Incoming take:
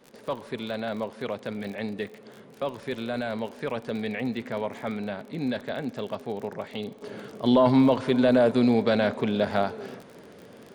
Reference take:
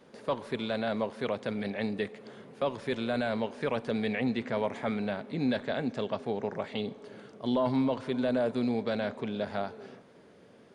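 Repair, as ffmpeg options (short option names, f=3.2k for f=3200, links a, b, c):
-af "adeclick=t=4,asetnsamples=n=441:p=0,asendcmd='7.02 volume volume -8.5dB',volume=0dB"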